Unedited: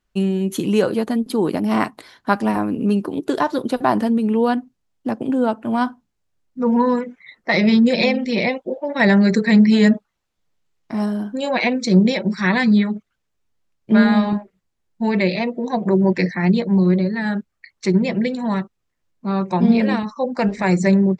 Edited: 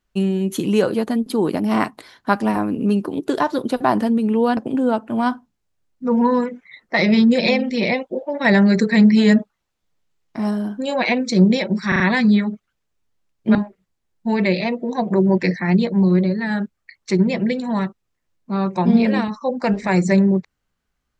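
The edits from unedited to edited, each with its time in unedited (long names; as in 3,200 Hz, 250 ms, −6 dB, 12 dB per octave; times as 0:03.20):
0:04.57–0:05.12: remove
0:12.43: stutter 0.04 s, 4 plays
0:13.98–0:14.30: remove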